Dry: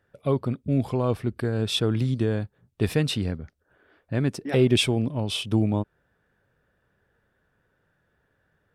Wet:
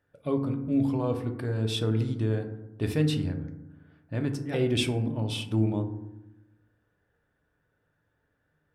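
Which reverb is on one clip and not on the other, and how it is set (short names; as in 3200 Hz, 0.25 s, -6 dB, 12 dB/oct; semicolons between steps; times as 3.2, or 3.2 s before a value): FDN reverb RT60 0.92 s, low-frequency decay 1.45×, high-frequency decay 0.35×, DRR 4.5 dB; gain -6.5 dB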